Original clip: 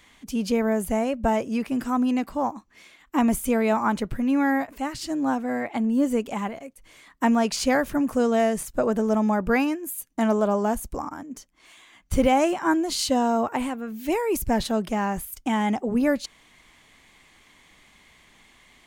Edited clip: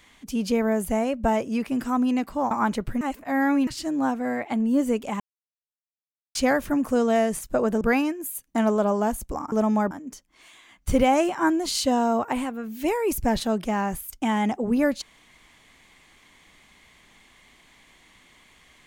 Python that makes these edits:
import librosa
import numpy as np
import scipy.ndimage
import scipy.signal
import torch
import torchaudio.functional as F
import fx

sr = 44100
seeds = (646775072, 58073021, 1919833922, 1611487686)

y = fx.edit(x, sr, fx.cut(start_s=2.51, length_s=1.24),
    fx.reverse_span(start_s=4.25, length_s=0.66),
    fx.silence(start_s=6.44, length_s=1.15),
    fx.move(start_s=9.05, length_s=0.39, to_s=11.15), tone=tone)